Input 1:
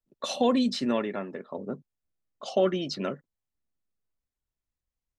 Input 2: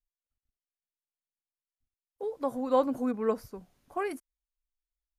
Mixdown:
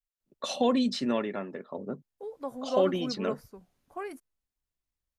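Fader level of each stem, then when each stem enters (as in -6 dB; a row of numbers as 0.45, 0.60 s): -1.5, -5.5 dB; 0.20, 0.00 s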